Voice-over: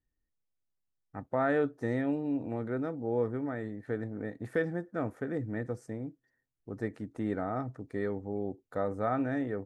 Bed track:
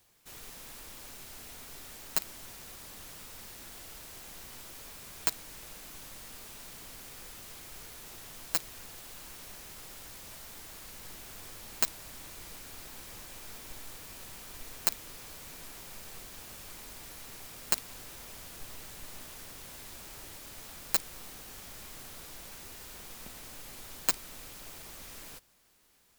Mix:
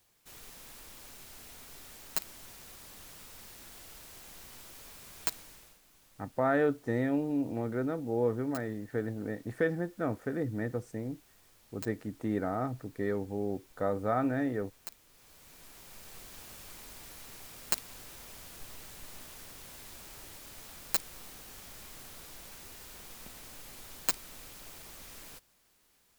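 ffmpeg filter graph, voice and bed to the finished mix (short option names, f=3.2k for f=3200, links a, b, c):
-filter_complex "[0:a]adelay=5050,volume=1dB[a];[1:a]volume=11dB,afade=t=out:st=5.37:d=0.42:silence=0.223872,afade=t=in:st=15.09:d=1.24:silence=0.199526[b];[a][b]amix=inputs=2:normalize=0"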